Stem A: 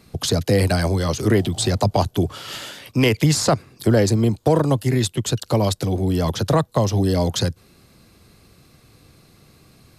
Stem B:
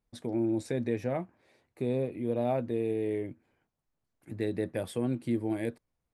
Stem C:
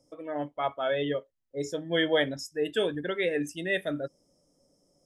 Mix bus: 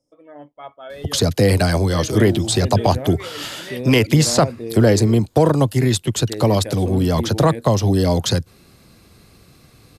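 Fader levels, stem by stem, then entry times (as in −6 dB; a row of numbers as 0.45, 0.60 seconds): +2.5, +2.0, −7.0 decibels; 0.90, 1.90, 0.00 seconds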